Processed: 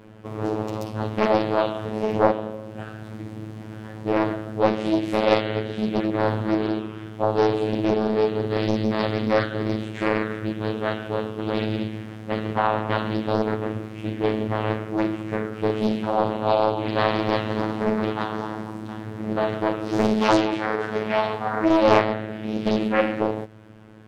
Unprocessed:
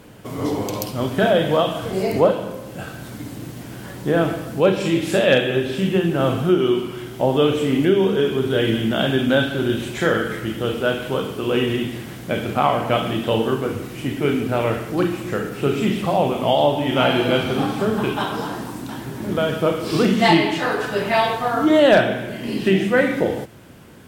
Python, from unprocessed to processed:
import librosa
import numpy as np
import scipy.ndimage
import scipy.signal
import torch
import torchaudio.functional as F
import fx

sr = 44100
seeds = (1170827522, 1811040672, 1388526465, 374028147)

y = fx.robotise(x, sr, hz=108.0)
y = fx.lowpass(y, sr, hz=1600.0, slope=6)
y = fx.doppler_dist(y, sr, depth_ms=0.9)